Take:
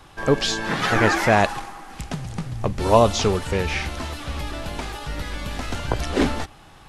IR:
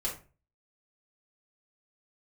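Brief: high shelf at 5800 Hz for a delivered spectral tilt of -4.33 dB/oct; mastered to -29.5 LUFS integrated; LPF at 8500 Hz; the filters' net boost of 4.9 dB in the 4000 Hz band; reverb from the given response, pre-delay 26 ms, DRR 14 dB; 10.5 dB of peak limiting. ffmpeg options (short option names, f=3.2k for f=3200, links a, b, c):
-filter_complex "[0:a]lowpass=8.5k,equalizer=f=4k:t=o:g=8,highshelf=f=5.8k:g=-5,alimiter=limit=-12dB:level=0:latency=1,asplit=2[a][b];[1:a]atrim=start_sample=2205,adelay=26[c];[b][c]afir=irnorm=-1:irlink=0,volume=-17.5dB[d];[a][d]amix=inputs=2:normalize=0,volume=-4.5dB"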